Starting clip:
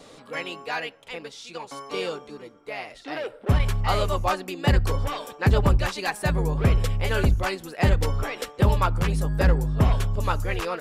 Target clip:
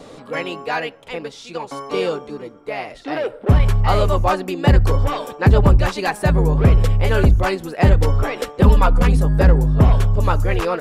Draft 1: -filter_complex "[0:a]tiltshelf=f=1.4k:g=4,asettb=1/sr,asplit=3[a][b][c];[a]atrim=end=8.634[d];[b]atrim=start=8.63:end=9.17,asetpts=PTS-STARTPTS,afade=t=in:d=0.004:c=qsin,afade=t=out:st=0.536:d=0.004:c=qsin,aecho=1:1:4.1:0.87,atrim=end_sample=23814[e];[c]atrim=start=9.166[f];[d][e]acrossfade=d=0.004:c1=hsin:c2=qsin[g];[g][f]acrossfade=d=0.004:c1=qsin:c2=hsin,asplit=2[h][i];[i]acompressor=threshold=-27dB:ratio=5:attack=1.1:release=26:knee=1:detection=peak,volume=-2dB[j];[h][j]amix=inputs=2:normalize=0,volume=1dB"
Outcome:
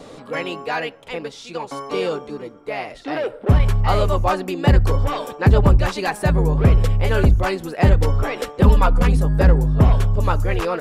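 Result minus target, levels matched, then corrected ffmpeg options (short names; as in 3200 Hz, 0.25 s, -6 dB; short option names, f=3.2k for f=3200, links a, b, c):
compressor: peak gain reduction +5.5 dB
-filter_complex "[0:a]tiltshelf=f=1.4k:g=4,asettb=1/sr,asplit=3[a][b][c];[a]atrim=end=8.634[d];[b]atrim=start=8.63:end=9.17,asetpts=PTS-STARTPTS,afade=t=in:d=0.004:c=qsin,afade=t=out:st=0.536:d=0.004:c=qsin,aecho=1:1:4.1:0.87,atrim=end_sample=23814[e];[c]atrim=start=9.166[f];[d][e]acrossfade=d=0.004:c1=hsin:c2=qsin[g];[g][f]acrossfade=d=0.004:c1=qsin:c2=hsin,asplit=2[h][i];[i]acompressor=threshold=-20dB:ratio=5:attack=1.1:release=26:knee=1:detection=peak,volume=-2dB[j];[h][j]amix=inputs=2:normalize=0,volume=1dB"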